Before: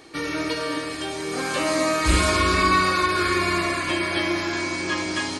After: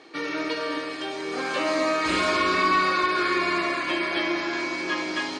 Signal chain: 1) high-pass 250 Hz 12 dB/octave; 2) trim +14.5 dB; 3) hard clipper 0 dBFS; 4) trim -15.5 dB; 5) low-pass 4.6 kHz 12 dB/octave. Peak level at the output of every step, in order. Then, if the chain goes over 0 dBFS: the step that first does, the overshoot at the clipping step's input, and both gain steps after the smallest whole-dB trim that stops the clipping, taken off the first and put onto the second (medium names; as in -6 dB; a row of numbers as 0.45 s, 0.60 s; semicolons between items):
-8.0 dBFS, +6.5 dBFS, 0.0 dBFS, -15.5 dBFS, -15.0 dBFS; step 2, 6.5 dB; step 2 +7.5 dB, step 4 -8.5 dB